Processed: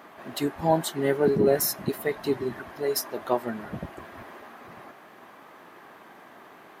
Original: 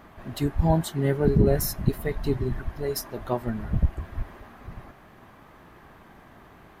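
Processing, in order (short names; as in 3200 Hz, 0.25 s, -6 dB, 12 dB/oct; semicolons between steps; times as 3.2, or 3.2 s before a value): HPF 310 Hz 12 dB/oct; gain +3.5 dB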